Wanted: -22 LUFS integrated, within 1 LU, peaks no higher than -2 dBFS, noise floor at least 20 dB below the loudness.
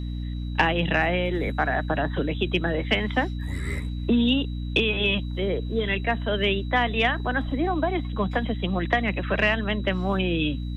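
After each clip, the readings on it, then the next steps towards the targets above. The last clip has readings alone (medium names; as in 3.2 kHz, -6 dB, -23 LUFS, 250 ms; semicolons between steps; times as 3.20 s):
hum 60 Hz; highest harmonic 300 Hz; hum level -28 dBFS; steady tone 3.9 kHz; tone level -49 dBFS; loudness -25.0 LUFS; peak level -7.5 dBFS; loudness target -22.0 LUFS
-> hum notches 60/120/180/240/300 Hz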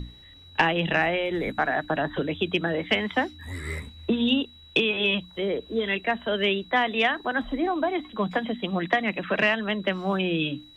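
hum not found; steady tone 3.9 kHz; tone level -49 dBFS
-> band-stop 3.9 kHz, Q 30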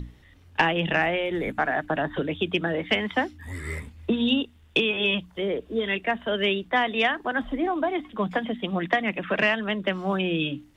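steady tone not found; loudness -25.5 LUFS; peak level -7.5 dBFS; loudness target -22.0 LUFS
-> trim +3.5 dB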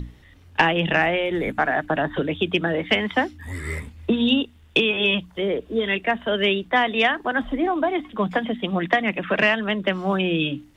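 loudness -22.0 LUFS; peak level -4.0 dBFS; noise floor -51 dBFS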